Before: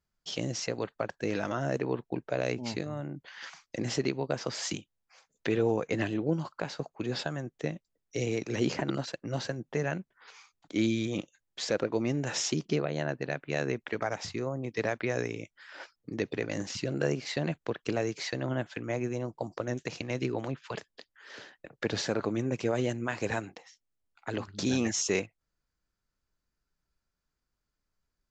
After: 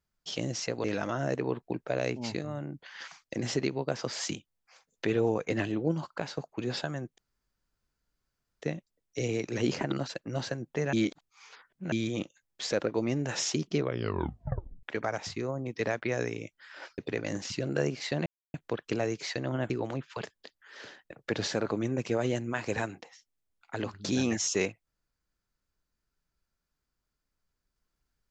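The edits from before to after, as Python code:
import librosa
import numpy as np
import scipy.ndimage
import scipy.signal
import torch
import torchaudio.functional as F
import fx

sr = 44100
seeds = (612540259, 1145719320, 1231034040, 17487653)

y = fx.edit(x, sr, fx.cut(start_s=0.84, length_s=0.42),
    fx.insert_room_tone(at_s=7.6, length_s=1.44),
    fx.reverse_span(start_s=9.91, length_s=0.99),
    fx.tape_stop(start_s=12.73, length_s=1.08),
    fx.cut(start_s=15.96, length_s=0.27),
    fx.insert_silence(at_s=17.51, length_s=0.28),
    fx.cut(start_s=18.67, length_s=1.57), tone=tone)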